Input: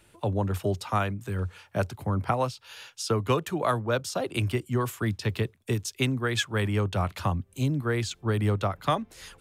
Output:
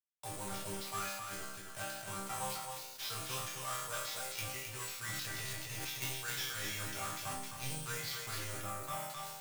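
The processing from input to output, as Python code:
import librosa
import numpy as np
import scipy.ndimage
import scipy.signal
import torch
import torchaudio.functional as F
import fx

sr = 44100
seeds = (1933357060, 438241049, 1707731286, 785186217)

y = fx.sample_hold(x, sr, seeds[0], rate_hz=8900.0, jitter_pct=0)
y = fx.tone_stack(y, sr, knobs='10-0-10')
y = fx.hum_notches(y, sr, base_hz=60, count=3)
y = fx.doubler(y, sr, ms=27.0, db=-9.5)
y = fx.quant_companded(y, sr, bits=2)
y = fx.resonator_bank(y, sr, root=48, chord='minor', decay_s=0.63)
y = y + 10.0 ** (-5.5 / 20.0) * np.pad(y, (int(262 * sr / 1000.0), 0))[:len(y)]
y = fx.transient(y, sr, attack_db=-2, sustain_db=12, at=(5.1, 5.85))
y = fx.peak_eq(y, sr, hz=4400.0, db=-8.0, octaves=1.8, at=(8.61, 9.1))
y = fx.sustainer(y, sr, db_per_s=35.0)
y = F.gain(torch.from_numpy(y), 7.5).numpy()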